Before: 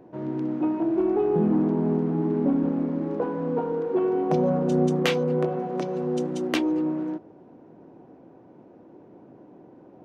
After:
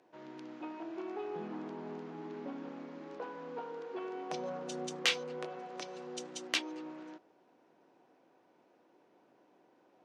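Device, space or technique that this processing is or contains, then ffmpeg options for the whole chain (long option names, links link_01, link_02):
piezo pickup straight into a mixer: -af "lowpass=5500,aderivative,volume=7dB"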